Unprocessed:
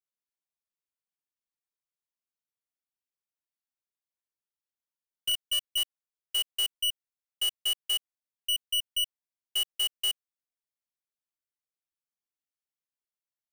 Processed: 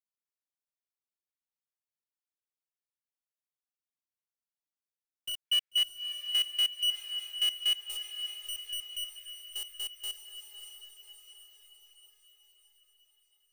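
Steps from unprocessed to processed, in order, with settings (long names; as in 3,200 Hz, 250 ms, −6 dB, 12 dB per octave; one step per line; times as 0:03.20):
0:05.45–0:07.76: parametric band 2,200 Hz +14.5 dB 1.5 octaves
feedback delay with all-pass diffusion 597 ms, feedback 57%, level −8 dB
level −8.5 dB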